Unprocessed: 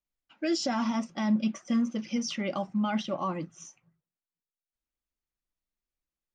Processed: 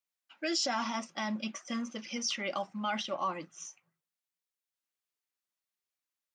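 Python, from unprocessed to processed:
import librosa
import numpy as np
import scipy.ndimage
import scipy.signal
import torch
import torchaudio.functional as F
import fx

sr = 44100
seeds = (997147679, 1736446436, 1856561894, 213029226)

y = fx.highpass(x, sr, hz=960.0, slope=6)
y = y * librosa.db_to_amplitude(2.5)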